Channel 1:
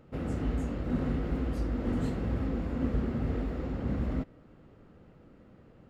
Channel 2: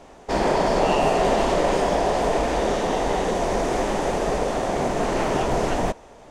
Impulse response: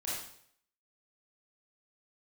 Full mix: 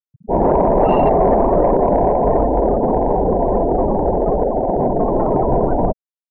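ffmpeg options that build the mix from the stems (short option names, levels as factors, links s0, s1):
-filter_complex "[0:a]volume=0.794[s0];[1:a]volume=1.26[s1];[s0][s1]amix=inputs=2:normalize=0,afftfilt=real='re*gte(hypot(re,im),0.158)':imag='im*gte(hypot(re,im),0.158)':win_size=1024:overlap=0.75,lowpass=f=1200:p=1,acontrast=58"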